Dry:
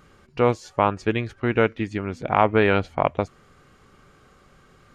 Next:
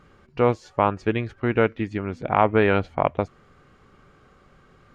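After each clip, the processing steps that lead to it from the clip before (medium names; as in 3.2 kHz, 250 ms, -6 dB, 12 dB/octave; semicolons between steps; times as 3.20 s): low-pass 2.9 kHz 6 dB/octave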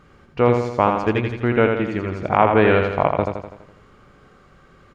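feedback delay 83 ms, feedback 53%, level -5 dB; trim +2.5 dB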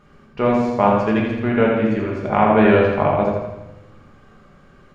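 reverberation RT60 0.90 s, pre-delay 5 ms, DRR -1 dB; trim -3.5 dB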